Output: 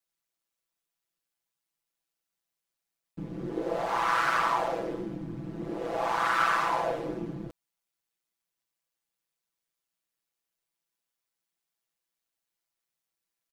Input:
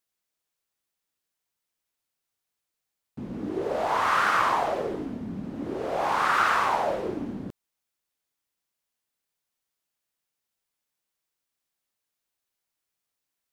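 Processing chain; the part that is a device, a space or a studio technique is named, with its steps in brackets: ring-modulated robot voice (ring modulator 60 Hz; comb 6 ms, depth 75%); trim -2 dB

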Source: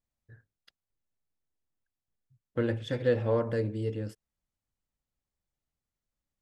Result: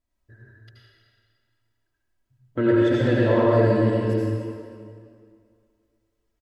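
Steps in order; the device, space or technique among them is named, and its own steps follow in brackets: comb 3.1 ms, depth 64%; swimming-pool hall (reverberation RT60 2.2 s, pre-delay 72 ms, DRR -6 dB; treble shelf 3.7 kHz -7 dB); trim +4.5 dB

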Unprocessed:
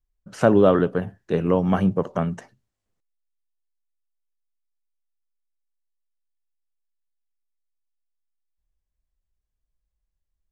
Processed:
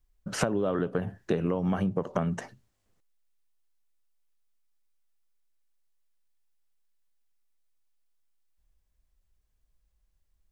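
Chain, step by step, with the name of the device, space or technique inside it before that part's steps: serial compression, leveller first (compression, threshold -18 dBFS, peak gain reduction 8 dB; compression 10:1, threshold -31 dBFS, peak gain reduction 15 dB); trim +7 dB

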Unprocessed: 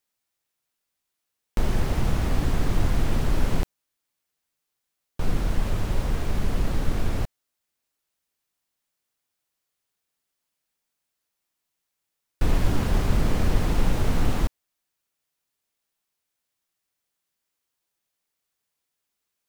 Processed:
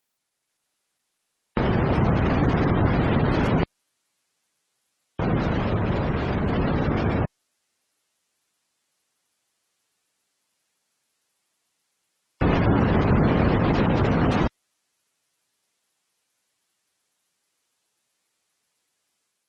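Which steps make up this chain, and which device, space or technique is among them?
noise-suppressed video call (high-pass 110 Hz 12 dB/octave; spectral gate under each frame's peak -25 dB strong; level rider gain up to 4 dB; trim +5 dB; Opus 16 kbps 48 kHz)

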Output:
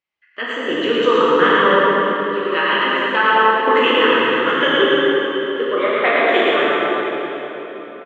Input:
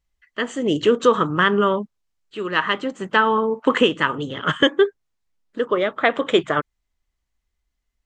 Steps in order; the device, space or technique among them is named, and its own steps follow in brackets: station announcement (band-pass 330–3600 Hz; peaking EQ 2.4 kHz +6 dB 0.53 oct; loudspeakers at several distances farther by 38 m -3 dB, 61 m -11 dB; reverberation RT60 4.0 s, pre-delay 4 ms, DRR -7 dB); trim -4 dB

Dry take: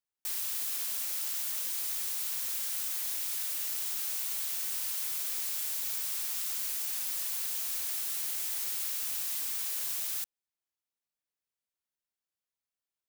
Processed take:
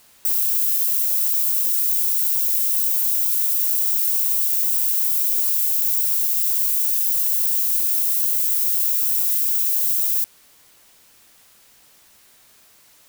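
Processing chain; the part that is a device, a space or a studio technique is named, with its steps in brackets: turntable without a phono preamp (RIAA curve recording; white noise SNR 32 dB); trim -3 dB

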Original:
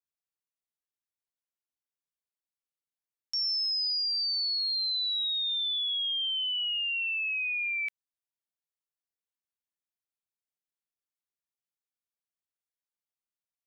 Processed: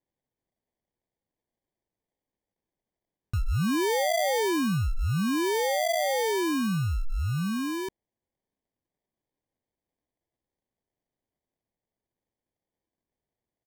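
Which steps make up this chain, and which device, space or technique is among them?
steep high-pass 2.4 kHz 72 dB/octave; crushed at another speed (playback speed 0.8×; sample-and-hold 41×; playback speed 1.25×); trim +4.5 dB

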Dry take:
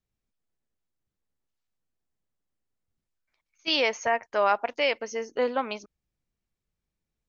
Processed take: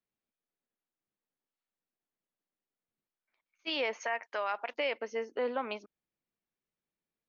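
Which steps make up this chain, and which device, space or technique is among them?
DJ mixer with the lows and highs turned down (three-band isolator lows -19 dB, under 180 Hz, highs -20 dB, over 4.1 kHz; peak limiter -20 dBFS, peak gain reduction 8.5 dB); 4.00–4.74 s: tilt EQ +3.5 dB/octave; trim -3 dB

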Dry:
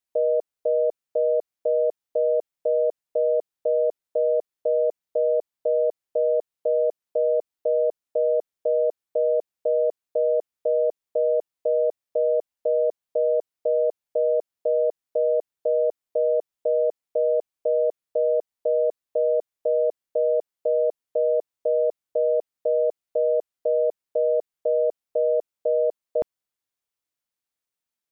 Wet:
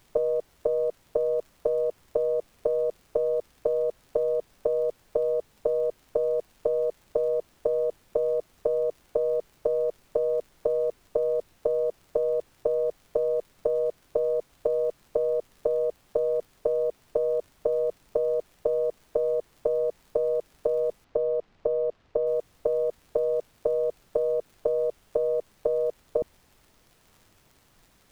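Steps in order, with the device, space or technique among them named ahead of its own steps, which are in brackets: low-pass that closes with the level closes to 400 Hz, closed at -22.5 dBFS; record under a worn stylus (tracing distortion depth 0.037 ms; crackle; pink noise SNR 34 dB); 21.04–22.27 s: distance through air 180 m; trim +2 dB

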